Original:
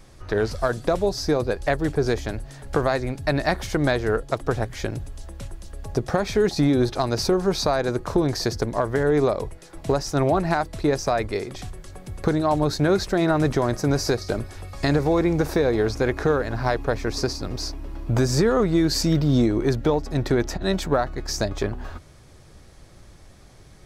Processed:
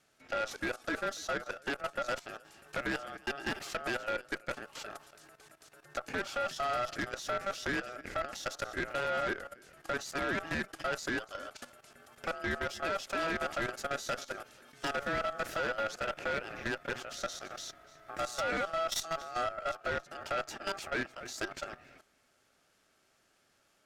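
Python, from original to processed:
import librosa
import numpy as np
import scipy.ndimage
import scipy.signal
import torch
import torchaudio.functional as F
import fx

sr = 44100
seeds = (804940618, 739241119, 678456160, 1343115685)

y = scipy.signal.sosfilt(scipy.signal.butter(2, 340.0, 'highpass', fs=sr, output='sos'), x)
y = fx.notch(y, sr, hz=510.0, q=13.0)
y = y + 10.0 ** (-19.5 / 20.0) * np.pad(y, (int(285 * sr / 1000.0), 0))[:len(y)]
y = y * np.sin(2.0 * np.pi * 980.0 * np.arange(len(y)) / sr)
y = fx.level_steps(y, sr, step_db=14)
y = fx.tube_stage(y, sr, drive_db=27.0, bias=0.4)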